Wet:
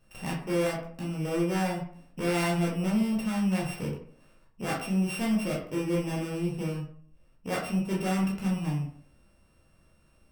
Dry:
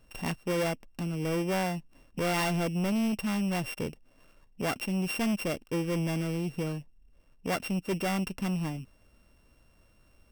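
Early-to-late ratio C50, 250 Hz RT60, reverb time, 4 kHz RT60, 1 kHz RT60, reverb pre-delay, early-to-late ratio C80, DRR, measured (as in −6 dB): 5.5 dB, 0.55 s, 0.55 s, 0.35 s, 0.55 s, 11 ms, 9.5 dB, −4.5 dB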